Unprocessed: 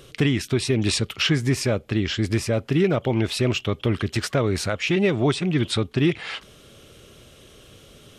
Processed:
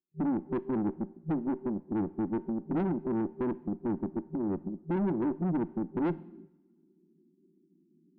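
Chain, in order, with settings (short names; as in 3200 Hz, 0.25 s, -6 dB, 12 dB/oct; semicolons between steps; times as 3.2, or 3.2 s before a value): gate -36 dBFS, range -42 dB; FFT band-pass 160–390 Hz; reverse; upward compressor, threshold -39 dBFS; reverse; tube stage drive 26 dB, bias 0.3; two-slope reverb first 0.78 s, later 2.1 s, from -22 dB, DRR 17 dB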